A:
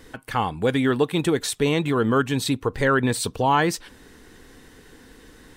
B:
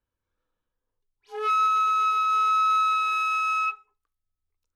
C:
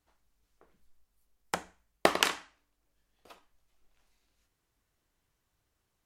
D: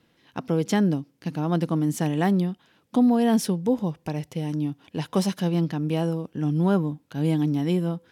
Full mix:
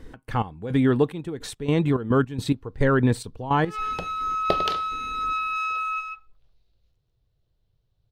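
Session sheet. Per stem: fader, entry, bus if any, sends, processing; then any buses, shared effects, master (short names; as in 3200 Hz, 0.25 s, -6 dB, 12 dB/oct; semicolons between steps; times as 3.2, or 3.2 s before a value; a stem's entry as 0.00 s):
-3.0 dB, 0.00 s, no send, no echo send, step gate "x.x..xxx..x.xx." 107 bpm -12 dB
-1.5 dB, 2.30 s, no send, echo send -3 dB, Bessel high-pass 1500 Hz, order 2
-1.5 dB, 2.45 s, no send, no echo send, graphic EQ 125/250/500/1000/2000/4000/8000 Hz +11/-10/+6/-6/-7/+12/-12 dB
off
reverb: off
echo: echo 0.14 s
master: tilt -2.5 dB/oct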